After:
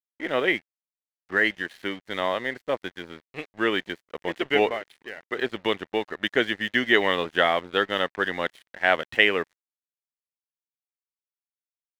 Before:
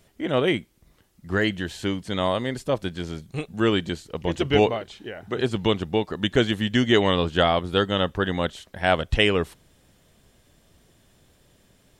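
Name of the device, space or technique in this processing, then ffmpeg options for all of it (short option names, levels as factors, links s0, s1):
pocket radio on a weak battery: -af "highpass=310,lowpass=3900,aeval=exprs='sgn(val(0))*max(abs(val(0))-0.00668,0)':c=same,equalizer=f=1900:t=o:w=0.55:g=9.5,volume=0.841"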